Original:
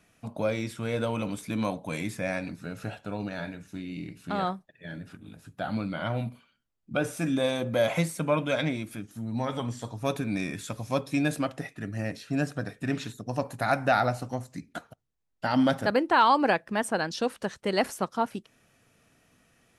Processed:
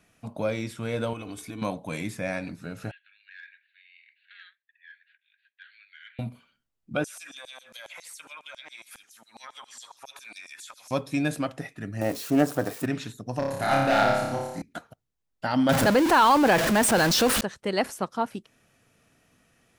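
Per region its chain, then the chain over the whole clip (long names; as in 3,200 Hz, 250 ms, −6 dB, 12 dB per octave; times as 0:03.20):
0:01.13–0:01.62: comb filter 2.7 ms, depth 57% + downward compressor 10 to 1, threshold −33 dBFS
0:02.91–0:06.19: Chebyshev band-pass filter 1,600–4,500 Hz, order 5 + high-frequency loss of the air 400 metres + saturating transformer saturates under 860 Hz
0:07.04–0:10.91: auto-filter high-pass saw down 7.3 Hz 720–7,800 Hz + downward compressor 16 to 1, threshold −39 dBFS + single-tap delay 78 ms −22 dB
0:12.01–0:12.86: spike at every zero crossing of −31 dBFS + flat-topped bell 590 Hz +9.5 dB 2.5 octaves + highs frequency-modulated by the lows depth 0.13 ms
0:13.39–0:14.62: gain into a clipping stage and back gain 20 dB + flutter between parallel walls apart 5 metres, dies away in 0.97 s
0:15.69–0:17.41: converter with a step at zero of −26 dBFS + envelope flattener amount 50%
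whole clip: no processing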